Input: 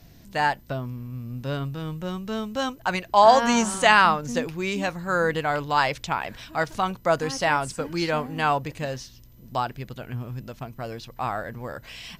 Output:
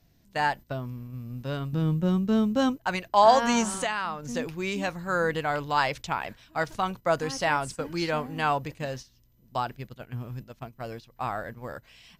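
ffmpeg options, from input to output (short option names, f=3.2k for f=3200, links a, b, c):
-filter_complex "[0:a]agate=range=-10dB:threshold=-35dB:ratio=16:detection=peak,asettb=1/sr,asplit=3[a][b][c];[a]atrim=end=1.734[d];[b]atrim=start=1.73:end=2.77,asetpts=PTS-STARTPTS,afade=t=in:d=0.004:c=qsin,afade=t=out:st=1.036:d=0.004:c=qsin,equalizer=f=200:w=0.52:g=11.5[e];[c]atrim=start=2.766[f];[d][e]acrossfade=d=0.004:c1=hsin:c2=qsin[g];[g][f]acrossfade=d=0.004:c1=qsin:c2=hsin,asplit=3[h][i][j];[h]afade=t=out:st=3.8:d=0.02[k];[i]acompressor=threshold=-24dB:ratio=5,afade=t=in:st=3.8:d=0.02,afade=t=out:st=4.38:d=0.02[l];[j]afade=t=in:st=4.38:d=0.02[m];[k][l][m]amix=inputs=3:normalize=0,volume=-3dB"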